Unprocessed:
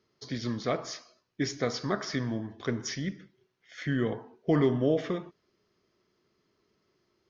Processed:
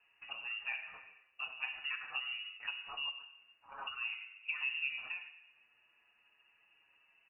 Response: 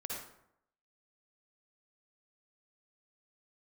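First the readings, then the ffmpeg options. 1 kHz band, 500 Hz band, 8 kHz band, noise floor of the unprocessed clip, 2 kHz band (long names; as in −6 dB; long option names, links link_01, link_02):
−10.0 dB, −34.5 dB, can't be measured, −75 dBFS, +2.0 dB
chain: -filter_complex "[0:a]aeval=exprs='if(lt(val(0),0),0.708*val(0),val(0))':channel_layout=same,highpass=48,bandreject=frequency=123.5:width_type=h:width=4,bandreject=frequency=247:width_type=h:width=4,bandreject=frequency=370.5:width_type=h:width=4,bandreject=frequency=494:width_type=h:width=4,bandreject=frequency=617.5:width_type=h:width=4,bandreject=frequency=741:width_type=h:width=4,bandreject=frequency=864.5:width_type=h:width=4,bandreject=frequency=988:width_type=h:width=4,bandreject=frequency=1111.5:width_type=h:width=4,bandreject=frequency=1235:width_type=h:width=4,bandreject=frequency=1358.5:width_type=h:width=4,bandreject=frequency=1482:width_type=h:width=4,bandreject=frequency=1605.5:width_type=h:width=4,bandreject=frequency=1729:width_type=h:width=4,bandreject=frequency=1852.5:width_type=h:width=4,bandreject=frequency=1976:width_type=h:width=4,bandreject=frequency=2099.5:width_type=h:width=4,bandreject=frequency=2223:width_type=h:width=4,bandreject=frequency=2346.5:width_type=h:width=4,bandreject=frequency=2470:width_type=h:width=4,bandreject=frequency=2593.5:width_type=h:width=4,bandreject=frequency=2717:width_type=h:width=4,bandreject=frequency=2840.5:width_type=h:width=4,asplit=2[link_01][link_02];[1:a]atrim=start_sample=2205[link_03];[link_02][link_03]afir=irnorm=-1:irlink=0,volume=-12dB[link_04];[link_01][link_04]amix=inputs=2:normalize=0,lowpass=frequency=2600:width_type=q:width=0.5098,lowpass=frequency=2600:width_type=q:width=0.6013,lowpass=frequency=2600:width_type=q:width=0.9,lowpass=frequency=2600:width_type=q:width=2.563,afreqshift=-3000,acompressor=threshold=-53dB:ratio=2,asplit=2[link_05][link_06];[link_06]adelay=6.7,afreqshift=-0.3[link_07];[link_05][link_07]amix=inputs=2:normalize=1,volume=7dB"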